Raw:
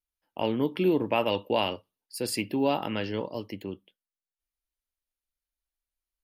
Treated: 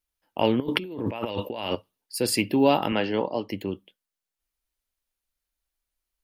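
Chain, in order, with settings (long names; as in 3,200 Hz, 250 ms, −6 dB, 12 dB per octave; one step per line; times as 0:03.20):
0:00.60–0:01.75: compressor whose output falls as the input rises −37 dBFS, ratio −1
0:02.92–0:03.49: loudspeaker in its box 160–6,900 Hz, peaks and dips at 770 Hz +7 dB, 3,600 Hz −3 dB, 5,500 Hz −9 dB
level +6 dB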